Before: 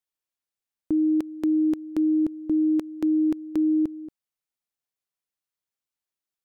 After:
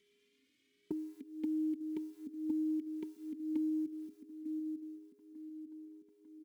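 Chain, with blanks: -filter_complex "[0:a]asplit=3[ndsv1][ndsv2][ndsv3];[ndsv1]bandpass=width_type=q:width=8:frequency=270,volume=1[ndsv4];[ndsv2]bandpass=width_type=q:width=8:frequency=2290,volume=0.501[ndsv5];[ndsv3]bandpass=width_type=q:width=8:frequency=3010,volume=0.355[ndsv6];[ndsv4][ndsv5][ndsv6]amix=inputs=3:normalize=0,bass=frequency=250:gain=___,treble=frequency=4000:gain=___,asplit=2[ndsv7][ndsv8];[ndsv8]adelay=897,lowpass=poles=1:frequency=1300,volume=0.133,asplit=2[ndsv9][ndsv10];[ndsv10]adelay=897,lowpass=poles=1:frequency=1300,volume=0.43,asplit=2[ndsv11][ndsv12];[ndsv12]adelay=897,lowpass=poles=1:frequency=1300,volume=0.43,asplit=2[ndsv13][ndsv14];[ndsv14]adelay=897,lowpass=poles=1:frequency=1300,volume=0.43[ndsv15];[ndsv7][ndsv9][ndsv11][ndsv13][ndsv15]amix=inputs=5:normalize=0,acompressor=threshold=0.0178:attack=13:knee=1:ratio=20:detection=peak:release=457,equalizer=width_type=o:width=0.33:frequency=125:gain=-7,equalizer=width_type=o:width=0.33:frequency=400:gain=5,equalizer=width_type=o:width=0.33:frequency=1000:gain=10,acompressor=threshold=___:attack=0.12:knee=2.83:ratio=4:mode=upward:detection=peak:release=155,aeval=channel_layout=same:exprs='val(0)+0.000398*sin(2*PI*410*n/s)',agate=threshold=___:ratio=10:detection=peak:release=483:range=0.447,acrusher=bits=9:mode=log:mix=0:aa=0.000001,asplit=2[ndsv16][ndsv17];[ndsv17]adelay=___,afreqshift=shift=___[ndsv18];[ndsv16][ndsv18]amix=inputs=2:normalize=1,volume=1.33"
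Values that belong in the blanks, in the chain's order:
8, 4, 0.00447, 0.00158, 2.6, 1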